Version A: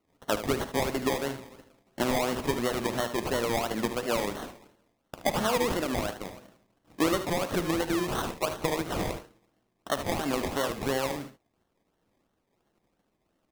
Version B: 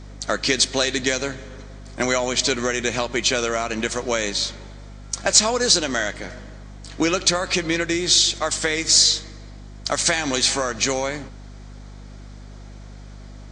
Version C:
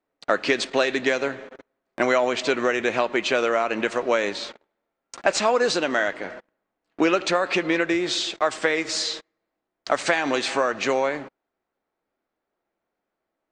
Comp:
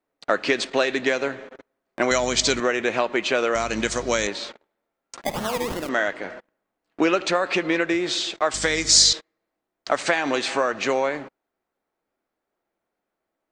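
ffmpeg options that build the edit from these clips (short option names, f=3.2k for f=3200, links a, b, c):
-filter_complex "[1:a]asplit=3[a][b][c];[2:a]asplit=5[d][e][f][g][h];[d]atrim=end=2.112[i];[a]atrim=start=2.108:end=2.602[j];[e]atrim=start=2.598:end=3.552[k];[b]atrim=start=3.548:end=4.272[l];[f]atrim=start=4.268:end=5.242[m];[0:a]atrim=start=5.238:end=5.892[n];[g]atrim=start=5.888:end=8.542[o];[c]atrim=start=8.538:end=9.132[p];[h]atrim=start=9.128[q];[i][j]acrossfade=d=0.004:c1=hsin:c2=hsin[r];[r][k]acrossfade=d=0.004:c1=hsin:c2=hsin[s];[s][l]acrossfade=d=0.004:c1=hsin:c2=hsin[t];[t][m]acrossfade=d=0.004:c1=hsin:c2=hsin[u];[u][n]acrossfade=d=0.004:c1=hsin:c2=hsin[v];[v][o]acrossfade=d=0.004:c1=hsin:c2=hsin[w];[w][p]acrossfade=d=0.004:c1=hsin:c2=hsin[x];[x][q]acrossfade=d=0.004:c1=hsin:c2=hsin"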